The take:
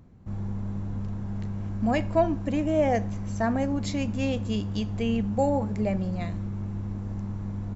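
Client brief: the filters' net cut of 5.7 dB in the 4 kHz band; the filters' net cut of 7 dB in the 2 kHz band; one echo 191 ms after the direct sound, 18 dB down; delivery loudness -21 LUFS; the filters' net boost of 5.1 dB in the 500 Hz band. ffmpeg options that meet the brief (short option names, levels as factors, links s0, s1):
-af "equalizer=f=500:t=o:g=7,equalizer=f=2000:t=o:g=-8,equalizer=f=4000:t=o:g=-4.5,aecho=1:1:191:0.126,volume=1.78"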